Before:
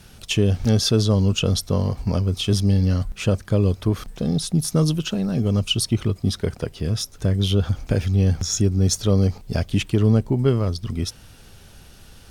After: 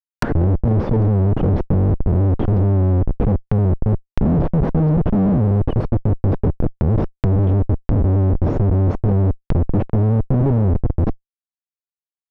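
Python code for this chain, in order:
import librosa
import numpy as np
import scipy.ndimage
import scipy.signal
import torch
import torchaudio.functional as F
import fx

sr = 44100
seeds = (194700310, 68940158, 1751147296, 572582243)

y = fx.tape_start_head(x, sr, length_s=0.49)
y = fx.schmitt(y, sr, flips_db=-24.0)
y = fx.env_lowpass_down(y, sr, base_hz=570.0, full_db=-23.5)
y = y * librosa.db_to_amplitude(7.0)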